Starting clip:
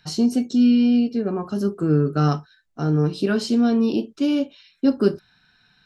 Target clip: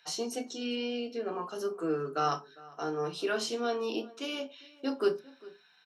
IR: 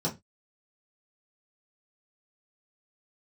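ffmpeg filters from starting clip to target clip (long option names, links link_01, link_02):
-filter_complex "[0:a]highpass=750,asplit=2[link_01][link_02];[link_02]adelay=402.3,volume=-21dB,highshelf=frequency=4000:gain=-9.05[link_03];[link_01][link_03]amix=inputs=2:normalize=0,asplit=2[link_04][link_05];[1:a]atrim=start_sample=2205[link_06];[link_05][link_06]afir=irnorm=-1:irlink=0,volume=-11.5dB[link_07];[link_04][link_07]amix=inputs=2:normalize=0,volume=-2.5dB"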